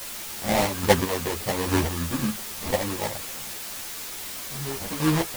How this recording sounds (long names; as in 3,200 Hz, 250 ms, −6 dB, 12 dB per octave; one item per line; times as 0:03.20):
aliases and images of a low sample rate 1,400 Hz, jitter 20%
chopped level 1.2 Hz, depth 60%, duty 25%
a quantiser's noise floor 6 bits, dither triangular
a shimmering, thickened sound